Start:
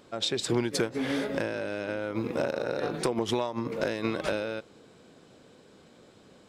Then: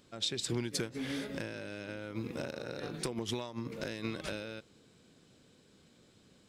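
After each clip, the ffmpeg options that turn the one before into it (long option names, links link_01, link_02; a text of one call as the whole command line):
ffmpeg -i in.wav -af "equalizer=frequency=720:width_type=o:width=2.7:gain=-10.5,volume=-2.5dB" out.wav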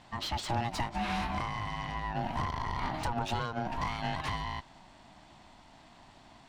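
ffmpeg -i in.wav -filter_complex "[0:a]asplit=2[link_01][link_02];[link_02]highpass=frequency=720:poles=1,volume=22dB,asoftclip=type=tanh:threshold=-19.5dB[link_03];[link_01][link_03]amix=inputs=2:normalize=0,lowpass=frequency=1200:poles=1,volume=-6dB,aeval=exprs='val(0)*sin(2*PI*470*n/s)':channel_layout=same,volume=2.5dB" out.wav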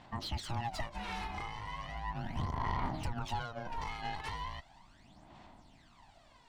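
ffmpeg -i in.wav -af "aphaser=in_gain=1:out_gain=1:delay=2.4:decay=0.62:speed=0.37:type=sinusoidal,volume=-7.5dB" out.wav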